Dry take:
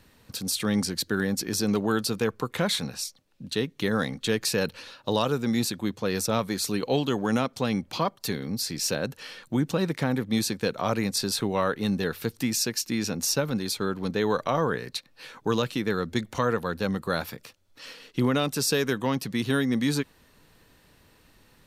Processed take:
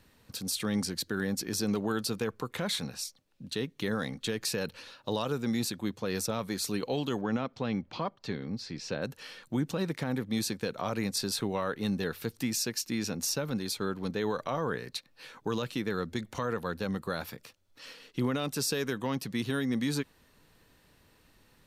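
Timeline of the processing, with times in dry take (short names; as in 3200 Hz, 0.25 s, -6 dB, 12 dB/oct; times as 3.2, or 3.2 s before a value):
7.21–9.02 air absorption 170 m
whole clip: limiter -16 dBFS; gain -4.5 dB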